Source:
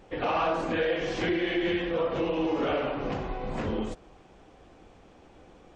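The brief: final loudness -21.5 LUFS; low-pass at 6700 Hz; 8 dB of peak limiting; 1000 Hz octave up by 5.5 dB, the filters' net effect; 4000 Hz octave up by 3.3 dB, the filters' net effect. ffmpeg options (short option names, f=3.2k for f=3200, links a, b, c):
-af "lowpass=6.7k,equalizer=f=1k:t=o:g=7,equalizer=f=4k:t=o:g=4.5,volume=7.5dB,alimiter=limit=-12.5dB:level=0:latency=1"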